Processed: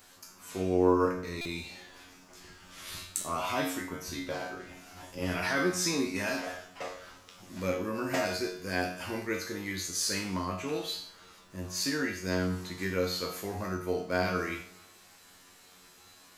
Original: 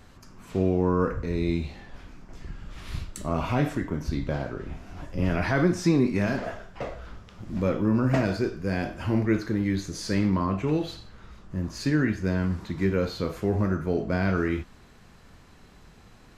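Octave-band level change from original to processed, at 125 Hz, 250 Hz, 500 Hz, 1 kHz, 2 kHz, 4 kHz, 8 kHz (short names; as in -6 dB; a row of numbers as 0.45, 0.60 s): -12.5, -8.5, -3.5, -1.5, -0.5, +4.5, +8.5 dB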